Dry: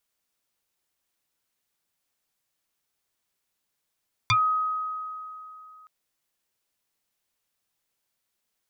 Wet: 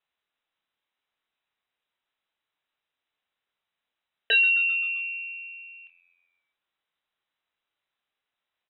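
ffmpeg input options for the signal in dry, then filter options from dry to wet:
-f lavfi -i "aevalsrc='0.141*pow(10,-3*t/2.98)*sin(2*PI*1260*t+4*pow(10,-3*t/0.12)*sin(2*PI*0.91*1260*t))':d=1.57:s=44100"
-filter_complex "[0:a]asplit=2[s0][s1];[s1]adelay=27,volume=0.398[s2];[s0][s2]amix=inputs=2:normalize=0,asplit=6[s3][s4][s5][s6][s7][s8];[s4]adelay=130,afreqshift=87,volume=0.126[s9];[s5]adelay=260,afreqshift=174,volume=0.0741[s10];[s6]adelay=390,afreqshift=261,volume=0.0437[s11];[s7]adelay=520,afreqshift=348,volume=0.026[s12];[s8]adelay=650,afreqshift=435,volume=0.0153[s13];[s3][s9][s10][s11][s12][s13]amix=inputs=6:normalize=0,lowpass=f=3400:t=q:w=0.5098,lowpass=f=3400:t=q:w=0.6013,lowpass=f=3400:t=q:w=0.9,lowpass=f=3400:t=q:w=2.563,afreqshift=-4000"

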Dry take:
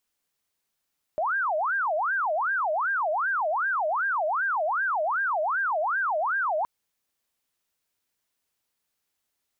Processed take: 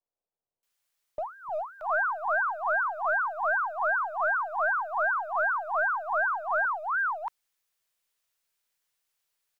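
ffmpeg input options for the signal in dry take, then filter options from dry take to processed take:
-f lavfi -i "aevalsrc='0.0708*sin(2*PI*(1108*t-502/(2*PI*2.6)*sin(2*PI*2.6*t)))':d=5.47:s=44100"
-filter_complex "[0:a]highpass=f=110:w=0.5412,highpass=f=110:w=1.3066,acrossover=split=190|800[s0][s1][s2];[s0]adelay=300[s3];[s2]adelay=630[s4];[s3][s1][s4]amix=inputs=3:normalize=0,acrossover=split=150|390[s5][s6][s7];[s6]aeval=exprs='abs(val(0))':c=same[s8];[s5][s8][s7]amix=inputs=3:normalize=0"

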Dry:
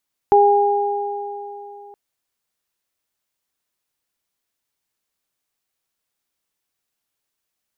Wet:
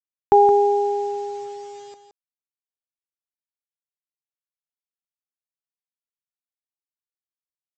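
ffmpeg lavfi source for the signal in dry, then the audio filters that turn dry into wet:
-f lavfi -i "aevalsrc='0.266*pow(10,-3*t/3.14)*sin(2*PI*407*t)+0.316*pow(10,-3*t/3.13)*sin(2*PI*814*t)':d=1.62:s=44100"
-af "aresample=16000,acrusher=bits=7:mix=0:aa=0.000001,aresample=44100,aecho=1:1:170:0.316"

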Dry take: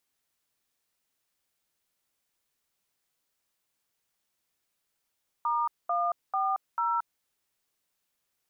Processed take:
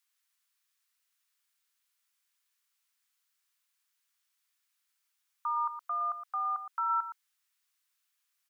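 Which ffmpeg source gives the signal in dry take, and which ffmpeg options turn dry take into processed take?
-f lavfi -i "aevalsrc='0.0422*clip(min(mod(t,0.443),0.226-mod(t,0.443))/0.002,0,1)*(eq(floor(t/0.443),0)*(sin(2*PI*941*mod(t,0.443))+sin(2*PI*1209*mod(t,0.443)))+eq(floor(t/0.443),1)*(sin(2*PI*697*mod(t,0.443))+sin(2*PI*1209*mod(t,0.443)))+eq(floor(t/0.443),2)*(sin(2*PI*770*mod(t,0.443))+sin(2*PI*1209*mod(t,0.443)))+eq(floor(t/0.443),3)*(sin(2*PI*941*mod(t,0.443))+sin(2*PI*1336*mod(t,0.443))))':d=1.772:s=44100"
-filter_complex "[0:a]highpass=f=1100:w=0.5412,highpass=f=1100:w=1.3066,asplit=2[s0][s1];[s1]aecho=0:1:116:0.316[s2];[s0][s2]amix=inputs=2:normalize=0"

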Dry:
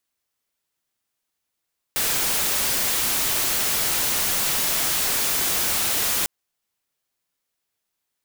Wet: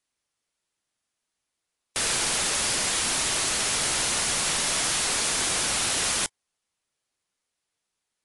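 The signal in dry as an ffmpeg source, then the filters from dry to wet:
-f lavfi -i "anoisesrc=c=white:a=0.13:d=4.3:r=44100:seed=1"
-ar 24000 -c:a libmp3lame -b:a 56k

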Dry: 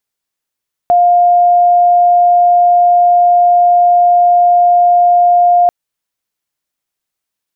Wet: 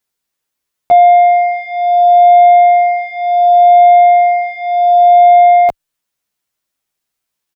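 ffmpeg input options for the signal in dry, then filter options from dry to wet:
-f lavfi -i "aevalsrc='0.562*sin(2*PI*705*t)':d=4.79:s=44100"
-filter_complex "[0:a]acontrast=48,asplit=2[s0][s1];[s1]adelay=10,afreqshift=-0.69[s2];[s0][s2]amix=inputs=2:normalize=1"

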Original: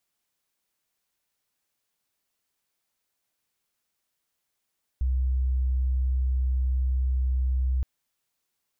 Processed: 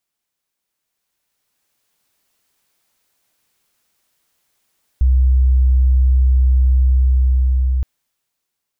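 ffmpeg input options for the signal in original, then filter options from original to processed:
-f lavfi -i "aevalsrc='0.0841*sin(2*PI*64.2*t)':d=2.82:s=44100"
-af "dynaudnorm=f=330:g=9:m=4.22"

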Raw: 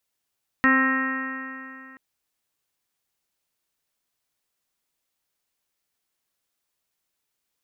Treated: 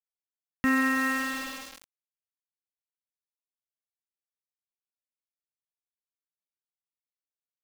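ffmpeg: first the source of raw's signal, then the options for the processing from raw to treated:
-f lavfi -i "aevalsrc='0.112*pow(10,-3*t/2.66)*sin(2*PI*262.1*t)+0.0266*pow(10,-3*t/2.66)*sin(2*PI*524.77*t)+0.0168*pow(10,-3*t/2.66)*sin(2*PI*788.61*t)+0.0501*pow(10,-3*t/2.66)*sin(2*PI*1054.19*t)+0.075*pow(10,-3*t/2.66)*sin(2*PI*1322.06*t)+0.0447*pow(10,-3*t/2.66)*sin(2*PI*1592.8*t)+0.141*pow(10,-3*t/2.66)*sin(2*PI*1866.95*t)+0.0158*pow(10,-3*t/2.66)*sin(2*PI*2145.06*t)+0.0126*pow(10,-3*t/2.66)*sin(2*PI*2427.64*t)+0.0126*pow(10,-3*t/2.66)*sin(2*PI*2715.21*t)':d=1.33:s=44100"
-filter_complex "[0:a]acrossover=split=350[s0][s1];[s1]alimiter=limit=0.0944:level=0:latency=1[s2];[s0][s2]amix=inputs=2:normalize=0,aeval=exprs='val(0)+0.00891*sin(2*PI*2700*n/s)':c=same,aeval=exprs='val(0)*gte(abs(val(0)),0.0237)':c=same"

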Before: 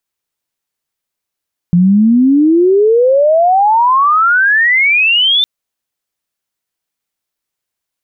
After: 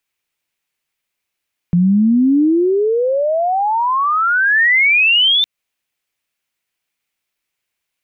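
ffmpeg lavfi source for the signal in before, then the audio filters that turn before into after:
-f lavfi -i "aevalsrc='pow(10,(-5-2.5*t/3.71)/20)*sin(2*PI*170*3.71/log(3600/170)*(exp(log(3600/170)*t/3.71)-1))':d=3.71:s=44100"
-filter_complex "[0:a]acrossover=split=240[s0][s1];[s1]acompressor=threshold=0.141:ratio=4[s2];[s0][s2]amix=inputs=2:normalize=0,equalizer=f=2400:w=1.6:g=9,alimiter=limit=0.355:level=0:latency=1"

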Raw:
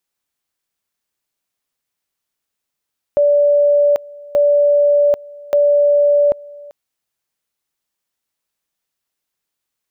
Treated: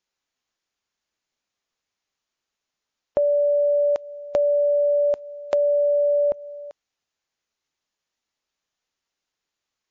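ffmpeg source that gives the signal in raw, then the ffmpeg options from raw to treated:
-f lavfi -i "aevalsrc='pow(10,(-9-23.5*gte(mod(t,1.18),0.79))/20)*sin(2*PI*580*t)':d=3.54:s=44100"
-af "equalizer=f=130:t=o:w=1.4:g=-3.5,acompressor=threshold=0.126:ratio=5" -ar 16000 -c:a libmp3lame -b:a 32k

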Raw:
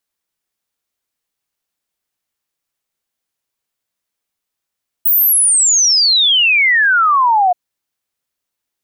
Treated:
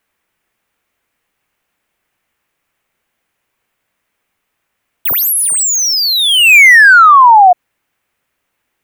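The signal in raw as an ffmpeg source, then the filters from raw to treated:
-f lavfi -i "aevalsrc='0.376*clip(min(t,2.48-t)/0.01,0,1)*sin(2*PI*16000*2.48/log(700/16000)*(exp(log(700/16000)*t/2.48)-1))':d=2.48:s=44100"
-filter_complex "[0:a]highshelf=f=3200:t=q:w=1.5:g=-8.5,acrossover=split=1800[s0][s1];[s1]asoftclip=type=tanh:threshold=0.0473[s2];[s0][s2]amix=inputs=2:normalize=0,alimiter=level_in=5.62:limit=0.891:release=50:level=0:latency=1"

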